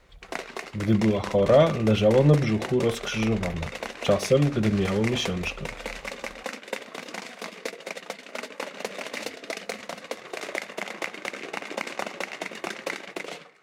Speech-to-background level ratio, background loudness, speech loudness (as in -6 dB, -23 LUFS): 11.5 dB, -35.0 LUFS, -23.5 LUFS